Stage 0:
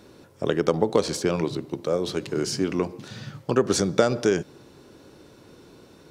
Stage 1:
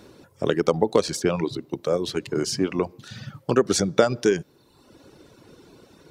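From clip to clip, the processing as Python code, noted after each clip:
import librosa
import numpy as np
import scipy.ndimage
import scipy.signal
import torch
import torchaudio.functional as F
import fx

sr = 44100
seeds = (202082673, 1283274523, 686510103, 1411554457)

y = fx.dereverb_blind(x, sr, rt60_s=0.98)
y = y * 10.0 ** (2.0 / 20.0)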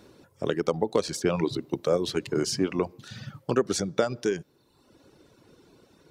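y = fx.rider(x, sr, range_db=10, speed_s=0.5)
y = y * 10.0 ** (-3.5 / 20.0)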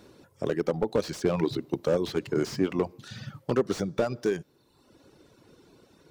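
y = fx.slew_limit(x, sr, full_power_hz=60.0)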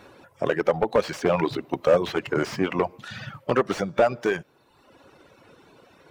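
y = fx.spec_quant(x, sr, step_db=15)
y = fx.band_shelf(y, sr, hz=1300.0, db=9.5, octaves=2.8)
y = y * 10.0 ** (1.0 / 20.0)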